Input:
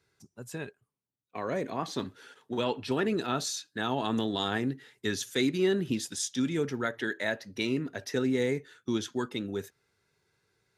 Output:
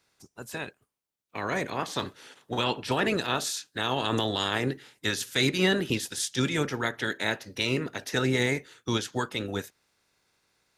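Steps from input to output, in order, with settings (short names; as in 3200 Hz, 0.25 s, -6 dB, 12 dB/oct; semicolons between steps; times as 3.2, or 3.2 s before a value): spectral limiter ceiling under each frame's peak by 15 dB; gain +2.5 dB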